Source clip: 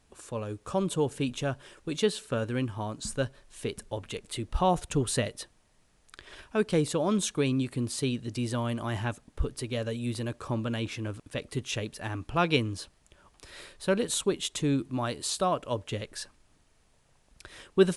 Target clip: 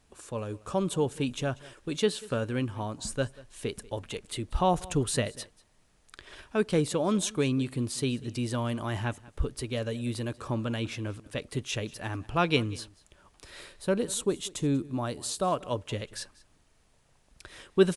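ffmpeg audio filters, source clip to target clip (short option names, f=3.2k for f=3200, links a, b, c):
-filter_complex "[0:a]asettb=1/sr,asplit=3[a][b][c];[a]atrim=end=13.764[d];[b]atrim=start=13.76:end=15.48,asetpts=PTS-STARTPTS,afade=t=in:d=0.004:c=qsin,afade=t=out:st=1.716:d=0.004:c=qsin,equalizer=f=2.5k:w=0.53:g=-5.5[e];[c]atrim=start=15.476[f];[d][e]acrossfade=d=0.004:c1=hsin:c2=qsin[g];[g][f]acrossfade=d=0.004:c1=qsin:c2=hsin,aecho=1:1:190:0.0841"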